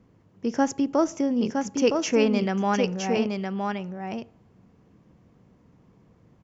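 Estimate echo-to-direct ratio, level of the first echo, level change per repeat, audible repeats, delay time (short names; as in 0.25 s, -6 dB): -4.5 dB, -4.5 dB, no steady repeat, 1, 0.964 s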